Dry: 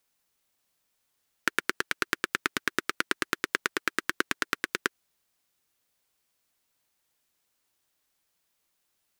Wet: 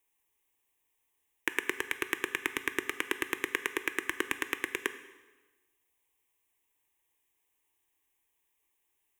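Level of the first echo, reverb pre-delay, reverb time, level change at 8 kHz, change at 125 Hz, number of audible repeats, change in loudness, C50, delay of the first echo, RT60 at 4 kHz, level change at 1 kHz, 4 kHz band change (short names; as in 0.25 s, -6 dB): none, 7 ms, 1.2 s, -4.0 dB, -8.0 dB, none, -3.0 dB, 12.5 dB, none, 1.1 s, -6.5 dB, -5.0 dB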